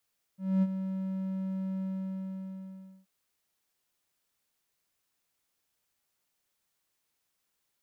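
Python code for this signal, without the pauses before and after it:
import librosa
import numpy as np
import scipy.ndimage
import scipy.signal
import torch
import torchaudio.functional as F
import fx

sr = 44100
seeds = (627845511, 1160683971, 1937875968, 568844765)

y = fx.adsr_tone(sr, wave='triangle', hz=190.0, attack_ms=243.0, decay_ms=42.0, sustain_db=-10.0, held_s=1.44, release_ms=1240.0, level_db=-19.0)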